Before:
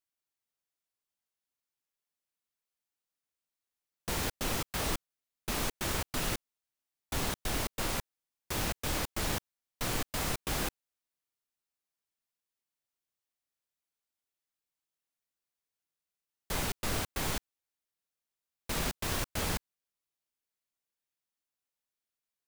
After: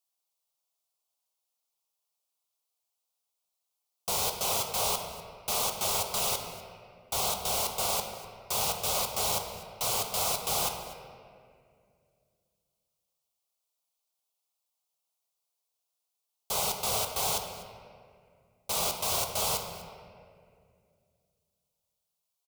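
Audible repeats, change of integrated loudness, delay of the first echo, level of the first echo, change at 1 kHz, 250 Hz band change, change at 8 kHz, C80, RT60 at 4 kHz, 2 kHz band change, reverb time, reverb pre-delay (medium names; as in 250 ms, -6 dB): 1, +5.5 dB, 246 ms, -19.0 dB, +6.5 dB, -7.0 dB, +7.5 dB, 6.5 dB, 1.4 s, -2.0 dB, 2.3 s, 3 ms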